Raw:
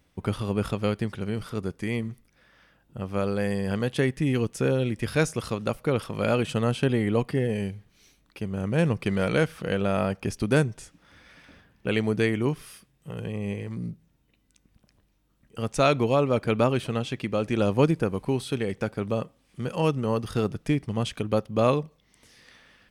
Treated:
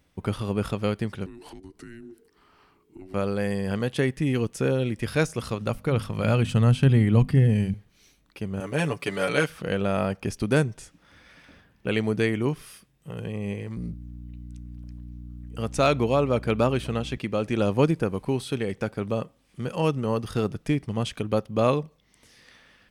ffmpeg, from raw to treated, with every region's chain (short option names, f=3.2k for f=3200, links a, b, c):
-filter_complex "[0:a]asettb=1/sr,asplit=3[a][b][c];[a]atrim=end=1.264[d];[b]atrim=start=1.26:end=3.14,asetpts=PTS-STARTPTS,afade=t=in:d=0.004:c=qsin,afade=t=out:st=1.876:d=0.004:c=qsin,acompressor=threshold=-40dB:ratio=6:attack=3.2:release=140:knee=1:detection=peak,afreqshift=-470[e];[c]atrim=start=3.136[f];[d][e]acrossfade=d=0.004:c1=hsin:c2=qsin[g];[g][f]acrossfade=d=0.004:c1=qsin:c2=hsin,asettb=1/sr,asplit=3[h][i][j];[h]atrim=end=5.264[k];[i]atrim=start=5.26:end=7.74,asetpts=PTS-STARTPTS,afade=t=in:d=0.004:c=qsin,afade=t=out:st=2.476:d=0.004:c=qsin,deesser=0.7,bandreject=f=50:t=h:w=6,bandreject=f=100:t=h:w=6,bandreject=f=150:t=h:w=6,bandreject=f=200:t=h:w=6,bandreject=f=250:t=h:w=6,asubboost=boost=8.5:cutoff=180[l];[j]atrim=start=7.736[m];[k][l]acrossfade=d=0.004:c1=hsin:c2=qsin[n];[n][m]acrossfade=d=0.004:c1=qsin:c2=hsin,asettb=1/sr,asplit=3[o][p][q];[o]atrim=end=8.604[r];[p]atrim=start=8.6:end=9.5,asetpts=PTS-STARTPTS,afade=t=in:d=0.004:c=qsin,afade=t=out:st=0.896:d=0.004:c=qsin,highpass=f=390:p=1,highshelf=f=6.7k:g=5,aecho=1:1:7:0.91,atrim=end_sample=39690[s];[q]atrim=start=9.496[t];[r][s]acrossfade=d=0.004:c1=hsin:c2=qsin[u];[u][t]acrossfade=d=0.004:c1=qsin:c2=hsin,asettb=1/sr,asplit=3[v][w][x];[v]atrim=end=13.774[y];[w]atrim=start=13.77:end=17.18,asetpts=PTS-STARTPTS,afade=t=in:d=0.004:c=qsin,afade=t=out:st=3.406:d=0.004:c=qsin,asoftclip=type=hard:threshold=-11.5dB,aeval=exprs='val(0)+0.0126*(sin(2*PI*60*n/s)+sin(2*PI*2*60*n/s)/2+sin(2*PI*3*60*n/s)/3+sin(2*PI*4*60*n/s)/4+sin(2*PI*5*60*n/s)/5)':c=same[z];[x]atrim=start=17.176[aa];[y][z]acrossfade=d=0.004:c1=hsin:c2=qsin[ab];[ab][aa]acrossfade=d=0.004:c1=qsin:c2=hsin"